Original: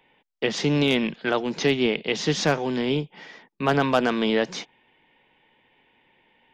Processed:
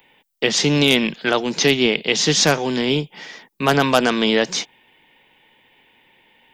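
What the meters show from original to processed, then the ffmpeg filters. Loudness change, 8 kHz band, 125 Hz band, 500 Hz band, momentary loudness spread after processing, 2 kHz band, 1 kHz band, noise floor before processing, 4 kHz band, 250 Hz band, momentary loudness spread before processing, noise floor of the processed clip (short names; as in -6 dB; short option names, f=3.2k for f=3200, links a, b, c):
+6.0 dB, +14.0 dB, +4.0 dB, +4.0 dB, 9 LU, +7.0 dB, +5.0 dB, -67 dBFS, +10.0 dB, +4.0 dB, 7 LU, -60 dBFS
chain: -af "aemphasis=mode=production:type=75kf,volume=4dB"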